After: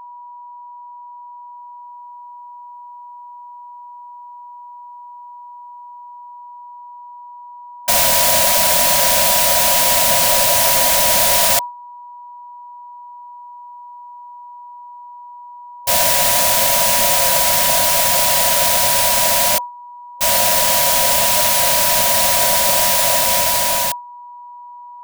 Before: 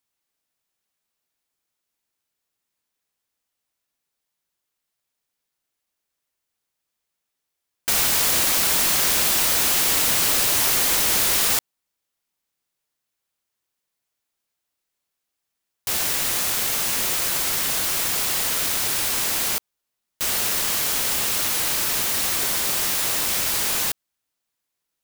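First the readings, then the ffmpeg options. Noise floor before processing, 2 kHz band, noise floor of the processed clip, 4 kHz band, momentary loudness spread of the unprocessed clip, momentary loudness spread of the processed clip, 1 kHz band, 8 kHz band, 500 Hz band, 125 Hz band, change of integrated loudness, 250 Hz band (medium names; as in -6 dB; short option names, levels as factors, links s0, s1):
-81 dBFS, +6.5 dB, -37 dBFS, +6.5 dB, 5 LU, 4 LU, +14.0 dB, +6.5 dB, +14.5 dB, +6.5 dB, +7.0 dB, +3.5 dB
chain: -filter_complex "[0:a]superequalizer=6b=0.316:7b=0.355:8b=3.55:10b=0.708,dynaudnorm=f=250:g=13:m=3.98,aeval=exprs='val(0)+0.0891*sin(2*PI*970*n/s)':c=same,asplit=2[s0][s1];[s1]aeval=exprs='clip(val(0),-1,0.237)':c=same,volume=0.355[s2];[s0][s2]amix=inputs=2:normalize=0,agate=range=0.0224:threshold=0.224:ratio=3:detection=peak,volume=0.75"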